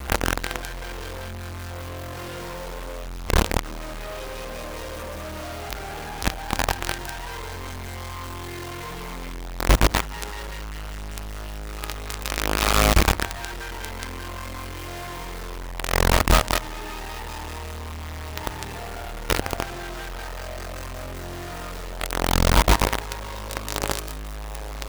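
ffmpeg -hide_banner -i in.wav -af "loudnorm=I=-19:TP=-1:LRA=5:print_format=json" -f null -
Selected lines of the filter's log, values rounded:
"input_i" : "-27.1",
"input_tp" : "-5.0",
"input_lra" : "6.6",
"input_thresh" : "-37.1",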